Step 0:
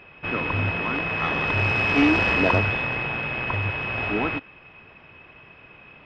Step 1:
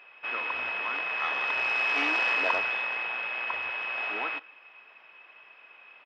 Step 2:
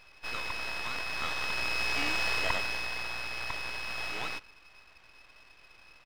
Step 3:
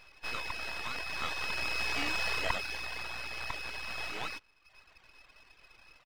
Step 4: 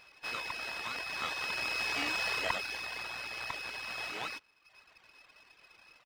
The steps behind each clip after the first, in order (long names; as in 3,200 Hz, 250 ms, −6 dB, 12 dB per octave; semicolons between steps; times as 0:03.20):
high-pass filter 760 Hz 12 dB per octave; slap from a distant wall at 27 metres, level −28 dB; level −3.5 dB
half-wave rectification
reverb reduction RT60 0.82 s
high-pass filter 170 Hz 6 dB per octave